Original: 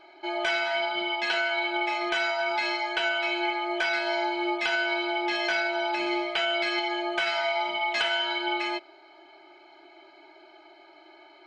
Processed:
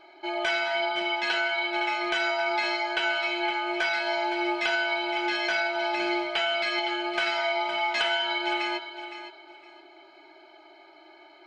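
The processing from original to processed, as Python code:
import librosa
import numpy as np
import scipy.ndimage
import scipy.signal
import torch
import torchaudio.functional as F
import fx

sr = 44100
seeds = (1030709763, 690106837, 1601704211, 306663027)

p1 = fx.rattle_buzz(x, sr, strikes_db=-43.0, level_db=-37.0)
y = p1 + fx.echo_feedback(p1, sr, ms=513, feedback_pct=23, wet_db=-11.0, dry=0)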